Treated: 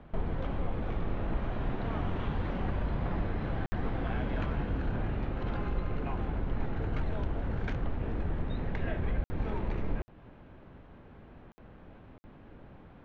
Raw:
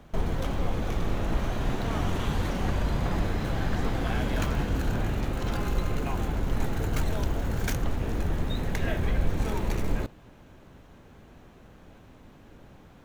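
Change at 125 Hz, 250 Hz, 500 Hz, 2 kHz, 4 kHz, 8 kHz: −4.5 dB, −4.5 dB, −5.0 dB, −6.5 dB, −12.0 dB, below −25 dB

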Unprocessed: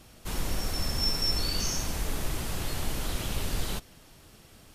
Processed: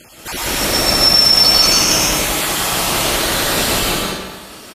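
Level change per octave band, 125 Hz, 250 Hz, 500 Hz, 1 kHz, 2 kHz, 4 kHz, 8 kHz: +8.0, +15.0, +19.0, +20.5, +21.0, +20.5, +20.0 decibels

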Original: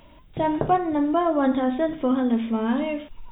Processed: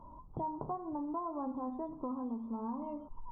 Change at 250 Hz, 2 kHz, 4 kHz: −16.5 dB, below −35 dB, can't be measured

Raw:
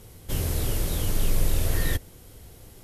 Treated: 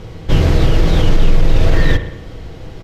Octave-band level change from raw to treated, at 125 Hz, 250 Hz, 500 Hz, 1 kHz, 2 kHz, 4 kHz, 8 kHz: +13.5, +15.5, +15.0, +14.5, +13.0, +10.0, −4.0 decibels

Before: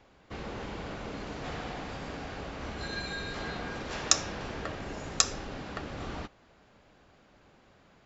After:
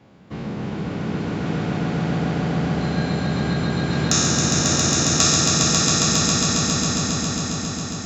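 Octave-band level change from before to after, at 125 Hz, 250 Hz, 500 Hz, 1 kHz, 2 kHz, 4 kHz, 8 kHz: +21.0 dB, +20.0 dB, +13.0 dB, +12.0 dB, +11.0 dB, +14.5 dB, can't be measured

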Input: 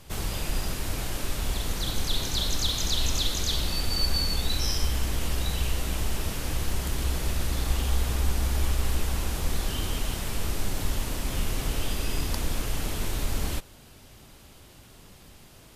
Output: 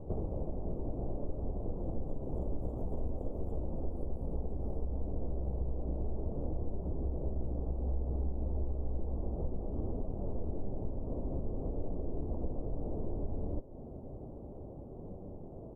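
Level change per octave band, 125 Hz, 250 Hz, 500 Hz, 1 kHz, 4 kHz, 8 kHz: −7.0 dB, −4.0 dB, −2.0 dB, −12.5 dB, below −40 dB, below −40 dB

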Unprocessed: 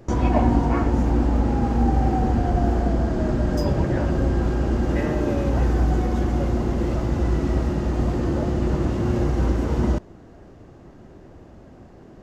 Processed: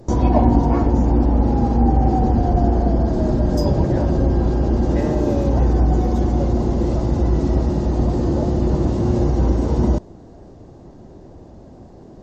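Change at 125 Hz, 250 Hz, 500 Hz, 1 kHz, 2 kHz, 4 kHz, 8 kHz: +4.0 dB, +4.0 dB, +4.0 dB, +3.5 dB, −4.5 dB, +0.5 dB, can't be measured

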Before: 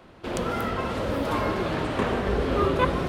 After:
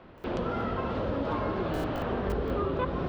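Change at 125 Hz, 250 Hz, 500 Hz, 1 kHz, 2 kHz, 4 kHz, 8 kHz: −4.0 dB, −4.0 dB, −4.5 dB, −5.5 dB, −8.5 dB, −9.5 dB, below −10 dB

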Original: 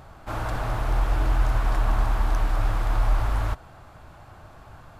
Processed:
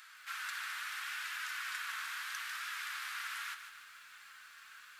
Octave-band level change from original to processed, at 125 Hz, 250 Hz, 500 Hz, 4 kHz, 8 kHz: below −40 dB, below −40 dB, below −40 dB, +0.5 dB, can't be measured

